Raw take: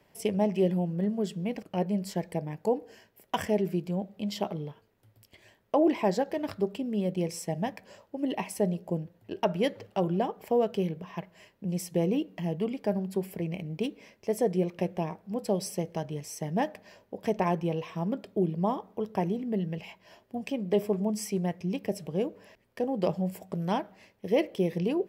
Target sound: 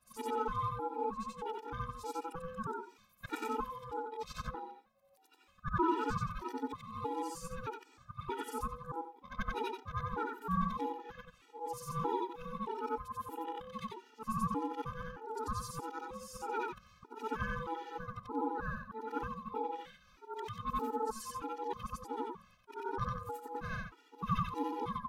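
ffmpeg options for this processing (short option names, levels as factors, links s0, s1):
-af "afftfilt=real='re':imag='-im':win_size=8192:overlap=0.75,aeval=exprs='val(0)*sin(2*PI*660*n/s)':c=same,afftfilt=real='re*gt(sin(2*PI*1.6*pts/sr)*(1-2*mod(floor(b*sr/1024/250),2)),0)':imag='im*gt(sin(2*PI*1.6*pts/sr)*(1-2*mod(floor(b*sr/1024/250),2)),0)':win_size=1024:overlap=0.75,volume=1.19"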